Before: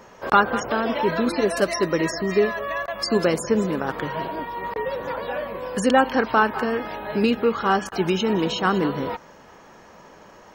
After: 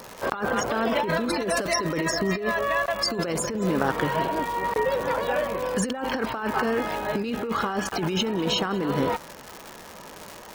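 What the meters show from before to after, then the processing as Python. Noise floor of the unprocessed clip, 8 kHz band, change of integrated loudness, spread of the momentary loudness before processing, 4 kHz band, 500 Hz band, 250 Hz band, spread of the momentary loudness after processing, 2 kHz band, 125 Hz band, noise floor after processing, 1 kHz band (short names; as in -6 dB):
-48 dBFS, +3.0 dB, -3.0 dB, 10 LU, +1.0 dB, -3.5 dB, -3.5 dB, 8 LU, -2.0 dB, -0.5 dB, -43 dBFS, -3.5 dB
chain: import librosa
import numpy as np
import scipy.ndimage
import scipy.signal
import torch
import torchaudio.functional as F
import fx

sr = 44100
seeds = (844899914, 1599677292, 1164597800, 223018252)

y = fx.dmg_crackle(x, sr, seeds[0], per_s=250.0, level_db=-31.0)
y = fx.over_compress(y, sr, threshold_db=-25.0, ratio=-1.0)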